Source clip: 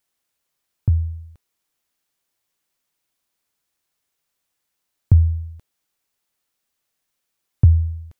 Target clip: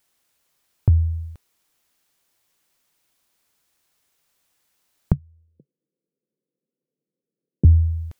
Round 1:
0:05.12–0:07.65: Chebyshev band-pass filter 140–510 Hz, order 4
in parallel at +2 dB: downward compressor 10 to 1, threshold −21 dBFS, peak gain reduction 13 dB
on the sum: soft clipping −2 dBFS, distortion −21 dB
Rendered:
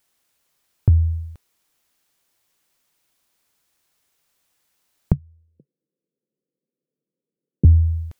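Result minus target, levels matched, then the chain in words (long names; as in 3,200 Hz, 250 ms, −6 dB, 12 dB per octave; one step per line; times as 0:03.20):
downward compressor: peak gain reduction −5.5 dB
0:05.12–0:07.65: Chebyshev band-pass filter 140–510 Hz, order 4
in parallel at +2 dB: downward compressor 10 to 1, threshold −27 dBFS, peak gain reduction 18.5 dB
on the sum: soft clipping −2 dBFS, distortion −24 dB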